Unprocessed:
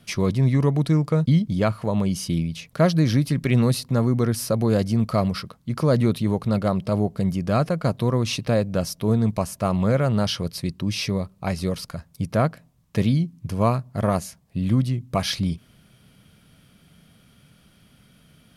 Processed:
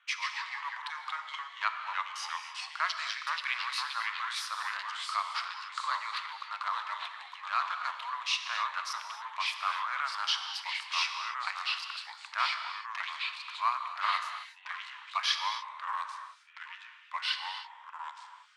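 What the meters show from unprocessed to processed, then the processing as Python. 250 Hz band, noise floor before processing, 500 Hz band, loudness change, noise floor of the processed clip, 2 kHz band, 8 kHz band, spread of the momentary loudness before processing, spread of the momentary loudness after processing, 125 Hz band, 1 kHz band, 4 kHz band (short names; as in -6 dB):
under -40 dB, -57 dBFS, -34.0 dB, -11.0 dB, -53 dBFS, +2.5 dB, -9.0 dB, 8 LU, 10 LU, under -40 dB, -1.0 dB, 0.0 dB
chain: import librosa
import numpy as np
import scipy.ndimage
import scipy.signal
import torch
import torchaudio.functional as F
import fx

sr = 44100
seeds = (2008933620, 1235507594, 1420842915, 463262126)

y = fx.wiener(x, sr, points=9)
y = scipy.signal.sosfilt(scipy.signal.butter(2, 4500.0, 'lowpass', fs=sr, output='sos'), y)
y = fx.rev_gated(y, sr, seeds[0], gate_ms=300, shape='flat', drr_db=6.5)
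y = fx.echo_pitch(y, sr, ms=126, semitones=-2, count=2, db_per_echo=-3.0)
y = scipy.signal.sosfilt(scipy.signal.butter(8, 1000.0, 'highpass', fs=sr, output='sos'), y)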